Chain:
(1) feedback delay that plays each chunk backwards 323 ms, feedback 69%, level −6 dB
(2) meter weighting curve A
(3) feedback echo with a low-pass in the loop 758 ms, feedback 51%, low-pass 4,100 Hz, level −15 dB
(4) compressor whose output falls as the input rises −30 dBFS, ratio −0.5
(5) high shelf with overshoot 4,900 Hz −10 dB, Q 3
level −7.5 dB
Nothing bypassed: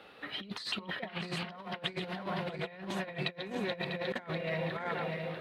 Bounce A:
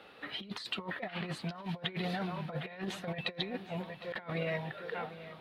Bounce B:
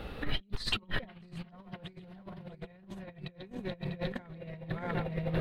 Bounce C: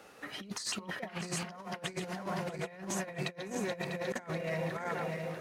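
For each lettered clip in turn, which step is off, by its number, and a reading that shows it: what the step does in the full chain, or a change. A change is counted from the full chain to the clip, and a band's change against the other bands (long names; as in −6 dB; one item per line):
1, 125 Hz band +2.5 dB
2, 125 Hz band +5.5 dB
5, 8 kHz band +15.5 dB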